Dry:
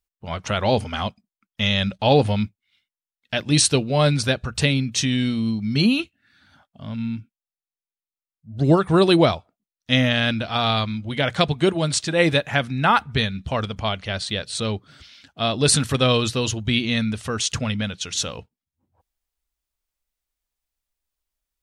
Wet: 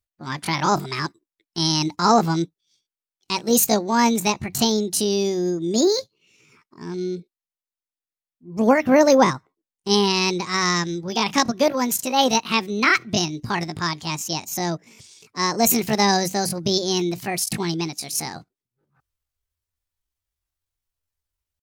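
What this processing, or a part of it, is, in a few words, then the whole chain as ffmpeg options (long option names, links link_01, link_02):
chipmunk voice: -filter_complex "[0:a]asetrate=70004,aresample=44100,atempo=0.629961,asettb=1/sr,asplit=3[link_01][link_02][link_03];[link_01]atrim=end=8.834[link_04];[link_02]atrim=start=8.83:end=9.94,asetpts=PTS-STARTPTS,afade=type=in:duration=0.004:curve=qsin,afade=type=out:start_time=1.106:duration=0.004:curve=qsin,tiltshelf=frequency=970:gain=3[link_05];[link_03]atrim=start=9.936[link_06];[link_04][link_05]acrossfade=duration=0.004:curve1=hsin:curve2=qsin[link_07];[link_07][link_06]acrossfade=duration=0.004:curve1=qsin:curve2=hsin"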